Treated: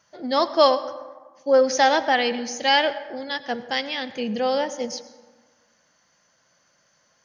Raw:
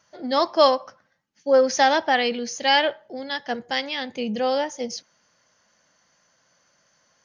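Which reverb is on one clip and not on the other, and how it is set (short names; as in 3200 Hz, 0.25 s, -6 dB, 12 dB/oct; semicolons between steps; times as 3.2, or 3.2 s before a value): plate-style reverb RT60 1.4 s, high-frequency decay 0.45×, pre-delay 80 ms, DRR 14.5 dB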